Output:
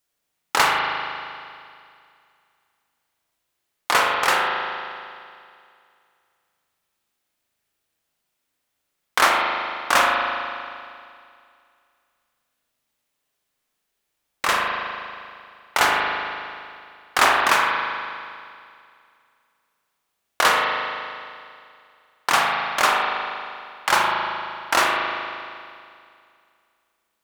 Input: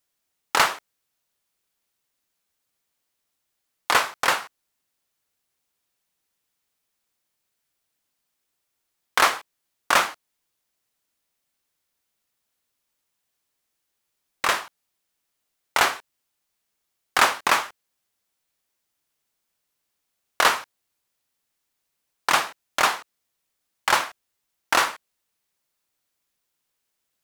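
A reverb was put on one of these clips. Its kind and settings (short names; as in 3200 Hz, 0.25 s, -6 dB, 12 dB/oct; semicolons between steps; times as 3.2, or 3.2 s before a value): spring tank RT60 2.3 s, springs 38 ms, chirp 25 ms, DRR -1.5 dB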